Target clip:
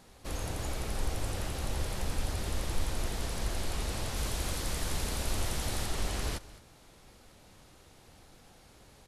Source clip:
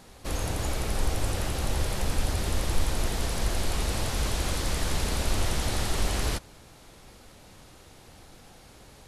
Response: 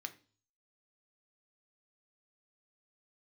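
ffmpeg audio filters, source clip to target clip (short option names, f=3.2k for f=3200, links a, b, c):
-filter_complex "[0:a]asettb=1/sr,asplit=3[a][b][c];[a]atrim=end=4.164[d];[b]atrim=start=4.16:end=5.86,asetpts=PTS-STARTPTS,afade=t=in:d=0.004:c=qsin,afade=t=out:st=1.696:d=0.004:c=qsin,highshelf=f=8.8k:g=6[e];[c]atrim=start=5.856[f];[d][e]acrossfade=d=0.004:c1=hsin:c2=qsin[g];[g][f]acrossfade=d=0.004:c1=qsin:c2=hsin,aecho=1:1:212:0.112,volume=-6dB"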